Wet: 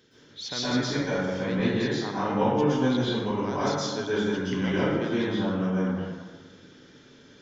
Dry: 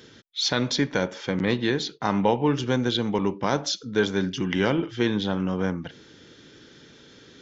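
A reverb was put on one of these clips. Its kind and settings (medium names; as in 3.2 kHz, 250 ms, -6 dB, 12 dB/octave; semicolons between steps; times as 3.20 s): plate-style reverb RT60 1.5 s, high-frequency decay 0.45×, pre-delay 105 ms, DRR -10 dB; trim -12.5 dB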